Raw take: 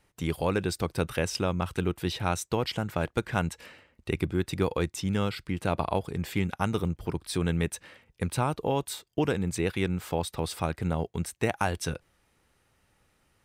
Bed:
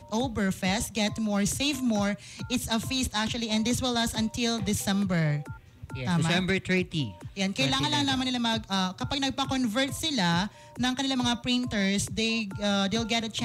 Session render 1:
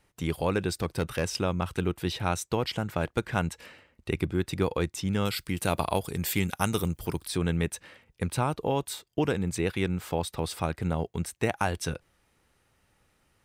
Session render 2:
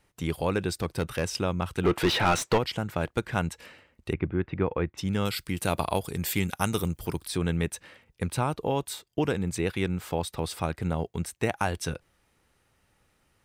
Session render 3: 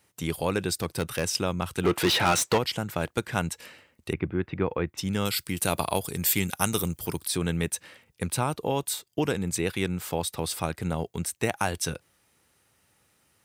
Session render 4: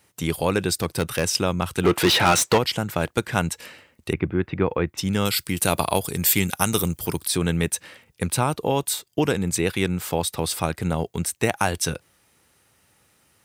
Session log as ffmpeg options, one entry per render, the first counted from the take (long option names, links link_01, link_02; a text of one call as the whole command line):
ffmpeg -i in.wav -filter_complex "[0:a]asettb=1/sr,asplit=3[link_01][link_02][link_03];[link_01]atrim=end=0.824[link_04];[link_02]atrim=start=0.82:end=1.4,asetpts=PTS-STARTPTS,afade=type=in:duration=0.004:curve=qsin,afade=type=out:start_time=0.576:duration=0.004:curve=qsin,asoftclip=type=hard:threshold=-20dB[link_05];[link_03]atrim=start=1.396[link_06];[link_04][link_05]acrossfade=duration=0.004:curve1=hsin:curve2=qsin[link_07];[link_07][link_06]acrossfade=duration=0.004:curve1=qsin:curve2=hsin,asettb=1/sr,asplit=3[link_08][link_09][link_10];[link_08]atrim=end=5.254[link_11];[link_09]atrim=start=5.25:end=7.28,asetpts=PTS-STARTPTS,afade=type=in:duration=0.004:curve=qsin,afade=type=out:start_time=2.026:duration=0.004:curve=qsin,aemphasis=mode=production:type=75kf[link_12];[link_10]atrim=start=7.276[link_13];[link_11][link_12]acrossfade=duration=0.004:curve1=hsin:curve2=qsin[link_14];[link_14][link_13]acrossfade=duration=0.004:curve1=qsin:curve2=hsin" out.wav
ffmpeg -i in.wav -filter_complex "[0:a]asplit=3[link_01][link_02][link_03];[link_01]afade=type=out:start_time=1.83:duration=0.02[link_04];[link_02]asplit=2[link_05][link_06];[link_06]highpass=frequency=720:poles=1,volume=28dB,asoftclip=type=tanh:threshold=-12.5dB[link_07];[link_05][link_07]amix=inputs=2:normalize=0,lowpass=frequency=1900:poles=1,volume=-6dB,afade=type=in:start_time=1.83:duration=0.02,afade=type=out:start_time=2.57:duration=0.02[link_08];[link_03]afade=type=in:start_time=2.57:duration=0.02[link_09];[link_04][link_08][link_09]amix=inputs=3:normalize=0,asplit=3[link_10][link_11][link_12];[link_10]afade=type=out:start_time=4.12:duration=0.02[link_13];[link_11]lowpass=frequency=2400:width=0.5412,lowpass=frequency=2400:width=1.3066,afade=type=in:start_time=4.12:duration=0.02,afade=type=out:start_time=4.97:duration=0.02[link_14];[link_12]afade=type=in:start_time=4.97:duration=0.02[link_15];[link_13][link_14][link_15]amix=inputs=3:normalize=0" out.wav
ffmpeg -i in.wav -af "highpass=82,highshelf=frequency=4800:gain=9.5" out.wav
ffmpeg -i in.wav -af "volume=5dB,alimiter=limit=-1dB:level=0:latency=1" out.wav